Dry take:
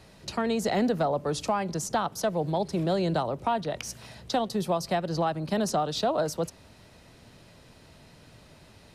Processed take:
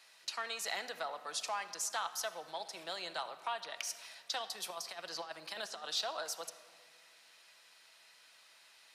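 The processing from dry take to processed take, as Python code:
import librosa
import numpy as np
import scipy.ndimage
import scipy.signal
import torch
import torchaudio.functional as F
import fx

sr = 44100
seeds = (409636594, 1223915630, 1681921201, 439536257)

y = scipy.signal.sosfilt(scipy.signal.butter(2, 1400.0, 'highpass', fs=sr, output='sos'), x)
y = fx.over_compress(y, sr, threshold_db=-40.0, ratio=-0.5, at=(4.62, 5.93))
y = fx.room_shoebox(y, sr, seeds[0], volume_m3=3000.0, walls='mixed', distance_m=0.7)
y = F.gain(torch.from_numpy(y), -2.5).numpy()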